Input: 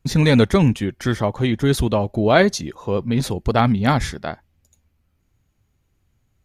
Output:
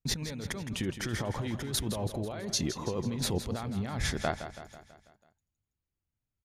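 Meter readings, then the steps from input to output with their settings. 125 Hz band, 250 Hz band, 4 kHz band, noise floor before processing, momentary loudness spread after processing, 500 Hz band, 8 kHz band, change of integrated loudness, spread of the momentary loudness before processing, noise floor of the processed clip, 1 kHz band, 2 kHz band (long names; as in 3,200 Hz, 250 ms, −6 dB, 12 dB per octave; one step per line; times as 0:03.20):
−15.0 dB, −16.0 dB, −7.5 dB, −67 dBFS, 6 LU, −17.0 dB, −2.5 dB, −15.0 dB, 12 LU, below −85 dBFS, −16.5 dB, −14.5 dB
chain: noise gate with hold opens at −48 dBFS
compressor whose output falls as the input rises −25 dBFS, ratio −1
repeating echo 164 ms, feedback 55%, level −11 dB
level −9 dB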